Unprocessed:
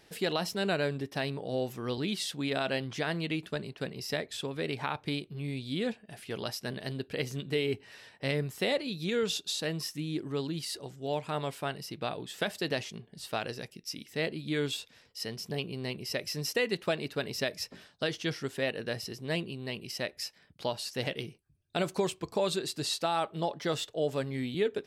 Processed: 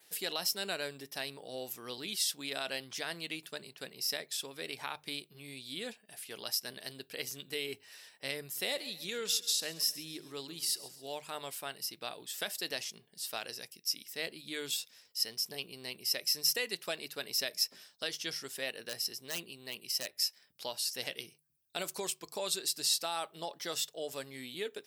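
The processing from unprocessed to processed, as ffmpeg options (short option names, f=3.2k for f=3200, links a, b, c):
-filter_complex "[0:a]asettb=1/sr,asplit=3[a][b][c];[a]atrim=end=8.424[d];[b]atrim=start=8.42:end=11.13,asetpts=PTS-STARTPTS,afade=t=in:d=0.004:c=qsin,afade=t=out:st=2.706:d=0.004:c=qsin,aecho=1:1:135|270|405|540:0.141|0.0636|0.0286|0.0129,atrim=end_sample=119511[e];[c]atrim=start=11.126[f];[d][e]acrossfade=d=0.004:c1=hsin:c2=qsin[g];[g][f]acrossfade=d=0.004:c1=qsin:c2=hsin,asettb=1/sr,asplit=3[h][i][j];[h]atrim=end=18.894[k];[i]atrim=start=18.89:end=20.18,asetpts=PTS-STARTPTS,afade=t=in:d=0.004:c=qsin,afade=t=out:st=1.286:d=0.004:c=qsin,aeval=exprs='0.0473*(abs(mod(val(0)/0.0473+3,4)-2)-1)':c=same[l];[j]atrim=start=20.176[m];[k][l]acrossfade=d=0.004:c1=hsin:c2=qsin[n];[n][m]acrossfade=d=0.004:c1=qsin:c2=hsin,aemphasis=mode=production:type=riaa,bandreject=f=50:t=h:w=6,bandreject=f=100:t=h:w=6,bandreject=f=150:t=h:w=6,adynamicequalizer=threshold=0.00501:dfrequency=5300:dqfactor=5.9:tfrequency=5300:tqfactor=5.9:attack=5:release=100:ratio=0.375:range=3:mode=boostabove:tftype=bell,volume=-7dB"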